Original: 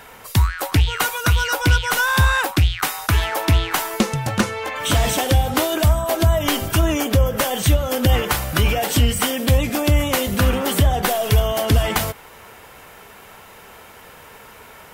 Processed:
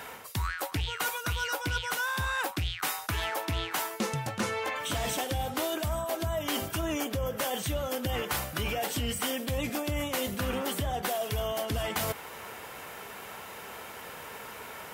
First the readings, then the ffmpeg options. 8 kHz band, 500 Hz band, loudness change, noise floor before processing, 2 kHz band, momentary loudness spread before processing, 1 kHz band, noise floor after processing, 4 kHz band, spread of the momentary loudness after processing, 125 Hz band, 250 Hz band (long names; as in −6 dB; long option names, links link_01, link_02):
−10.5 dB, −10.5 dB, −13.0 dB, −43 dBFS, −11.0 dB, 4 LU, −10.5 dB, −44 dBFS, −10.5 dB, 11 LU, −17.0 dB, −12.5 dB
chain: -af "highpass=frequency=140:poles=1,areverse,acompressor=threshold=-29dB:ratio=6,areverse"